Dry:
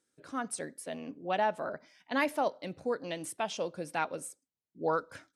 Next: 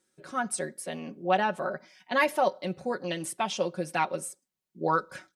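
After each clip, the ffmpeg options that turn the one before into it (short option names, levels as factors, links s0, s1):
-af "aecho=1:1:5.4:0.73,volume=1.5"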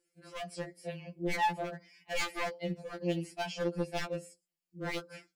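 -filter_complex "[0:a]acrossover=split=6000[s0][s1];[s1]acompressor=threshold=0.002:ratio=4:attack=1:release=60[s2];[s0][s2]amix=inputs=2:normalize=0,aeval=exprs='0.0668*(abs(mod(val(0)/0.0668+3,4)-2)-1)':c=same,afftfilt=real='re*2.83*eq(mod(b,8),0)':imag='im*2.83*eq(mod(b,8),0)':win_size=2048:overlap=0.75,volume=0.75"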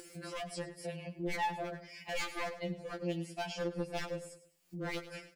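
-af "acompressor=mode=upward:threshold=0.0141:ratio=2.5,aecho=1:1:102|204|306:0.178|0.0587|0.0194,acompressor=threshold=0.00501:ratio=1.5,volume=1.33"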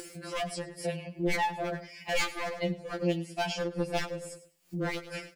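-af "tremolo=f=2.3:d=0.53,volume=2.66"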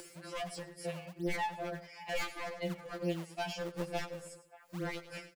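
-filter_complex "[0:a]acrossover=split=290|590|2000[s0][s1][s2][s3];[s0]acrusher=samples=38:mix=1:aa=0.000001:lfo=1:lforange=60.8:lforate=2.2[s4];[s2]aecho=1:1:585:0.2[s5];[s3]asoftclip=type=hard:threshold=0.0188[s6];[s4][s1][s5][s6]amix=inputs=4:normalize=0,volume=0.501"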